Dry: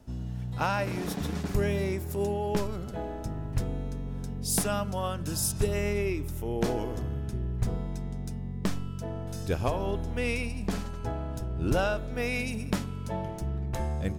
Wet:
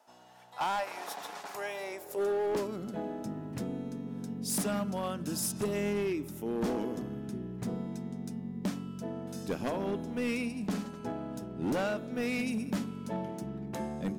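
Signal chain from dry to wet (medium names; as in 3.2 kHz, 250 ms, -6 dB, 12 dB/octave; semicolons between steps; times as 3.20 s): high-pass sweep 800 Hz -> 220 Hz, 1.77–2.84 s; hard clipper -23.5 dBFS, distortion -12 dB; trim -3.5 dB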